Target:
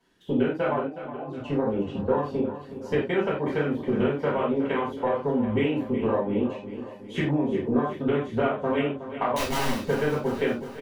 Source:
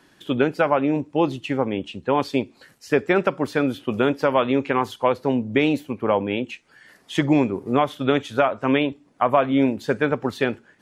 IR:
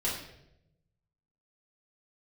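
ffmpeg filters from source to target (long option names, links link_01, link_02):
-filter_complex "[0:a]afwtdn=0.0398,acompressor=threshold=-27dB:ratio=10,asplit=3[link_01][link_02][link_03];[link_01]afade=type=out:start_time=0.82:duration=0.02[link_04];[link_02]asplit=3[link_05][link_06][link_07];[link_05]bandpass=frequency=730:width_type=q:width=8,volume=0dB[link_08];[link_06]bandpass=frequency=1090:width_type=q:width=8,volume=-6dB[link_09];[link_07]bandpass=frequency=2440:width_type=q:width=8,volume=-9dB[link_10];[link_08][link_09][link_10]amix=inputs=3:normalize=0,afade=type=in:start_time=0.82:duration=0.02,afade=type=out:start_time=1.25:duration=0.02[link_11];[link_03]afade=type=in:start_time=1.25:duration=0.02[link_12];[link_04][link_11][link_12]amix=inputs=3:normalize=0,asettb=1/sr,asplit=3[link_13][link_14][link_15];[link_13]atrim=end=9.364[link_16];[link_14]atrim=start=9.36:end=9.76,asetpts=PTS-STARTPTS,afade=type=in:duration=0.004:curve=qsin,afade=type=out:start_time=0.396:duration=0.004:curve=qsin,aeval=exprs='(mod(25.1*val(0)+1,2)-1)/25.1':channel_layout=same[link_17];[link_15]atrim=start=9.756[link_18];[link_16][link_17]acrossfade=duration=0.004:curve1=hsin:curve2=qsin[link_19];[link_19][link_18]acrossfade=duration=0.004:curve1=qsin:curve2=hsin,aecho=1:1:367|734|1101|1468|1835|2202:0.251|0.138|0.076|0.0418|0.023|0.0126[link_20];[1:a]atrim=start_sample=2205,afade=type=out:start_time=0.15:duration=0.01,atrim=end_sample=7056[link_21];[link_20][link_21]afir=irnorm=-1:irlink=0"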